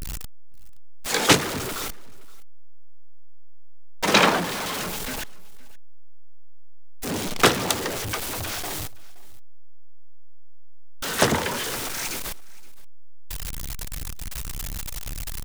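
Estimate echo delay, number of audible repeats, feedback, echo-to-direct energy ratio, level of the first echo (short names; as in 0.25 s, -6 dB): 0.521 s, 1, no steady repeat, -23.0 dB, -23.0 dB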